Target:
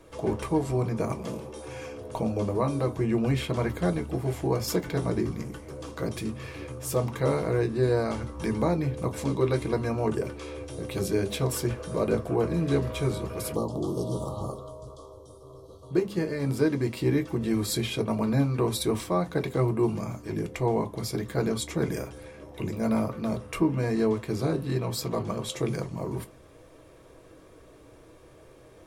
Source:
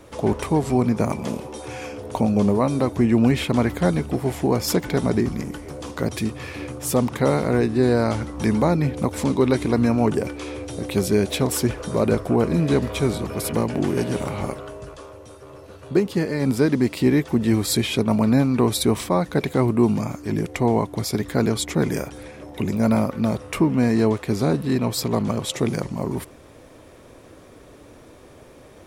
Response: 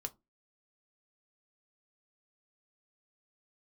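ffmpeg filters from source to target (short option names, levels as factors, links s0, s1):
-filter_complex "[0:a]asplit=3[s0][s1][s2];[s0]afade=t=out:st=13.54:d=0.02[s3];[s1]asuperstop=centerf=2000:order=12:qfactor=1,afade=t=in:st=13.54:d=0.02,afade=t=out:st=15.92:d=0.02[s4];[s2]afade=t=in:st=15.92:d=0.02[s5];[s3][s4][s5]amix=inputs=3:normalize=0[s6];[1:a]atrim=start_sample=2205,asetrate=41454,aresample=44100[s7];[s6][s7]afir=irnorm=-1:irlink=0,volume=0.562"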